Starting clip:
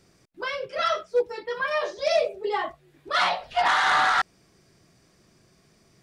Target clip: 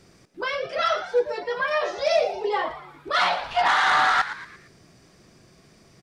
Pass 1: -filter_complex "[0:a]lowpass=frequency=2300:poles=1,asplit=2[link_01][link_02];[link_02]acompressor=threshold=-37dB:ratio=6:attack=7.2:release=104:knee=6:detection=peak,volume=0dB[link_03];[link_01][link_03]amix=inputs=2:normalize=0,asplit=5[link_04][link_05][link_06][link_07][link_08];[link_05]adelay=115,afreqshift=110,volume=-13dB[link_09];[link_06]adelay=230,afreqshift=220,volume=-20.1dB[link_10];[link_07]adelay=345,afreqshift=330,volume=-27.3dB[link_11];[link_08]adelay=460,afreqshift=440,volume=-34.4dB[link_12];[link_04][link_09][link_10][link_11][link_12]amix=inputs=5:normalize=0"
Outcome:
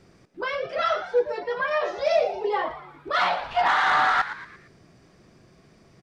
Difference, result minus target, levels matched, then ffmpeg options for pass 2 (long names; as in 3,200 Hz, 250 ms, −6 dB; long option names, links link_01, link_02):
8,000 Hz band −6.0 dB
-filter_complex "[0:a]lowpass=frequency=8300:poles=1,asplit=2[link_01][link_02];[link_02]acompressor=threshold=-37dB:ratio=6:attack=7.2:release=104:knee=6:detection=peak,volume=0dB[link_03];[link_01][link_03]amix=inputs=2:normalize=0,asplit=5[link_04][link_05][link_06][link_07][link_08];[link_05]adelay=115,afreqshift=110,volume=-13dB[link_09];[link_06]adelay=230,afreqshift=220,volume=-20.1dB[link_10];[link_07]adelay=345,afreqshift=330,volume=-27.3dB[link_11];[link_08]adelay=460,afreqshift=440,volume=-34.4dB[link_12];[link_04][link_09][link_10][link_11][link_12]amix=inputs=5:normalize=0"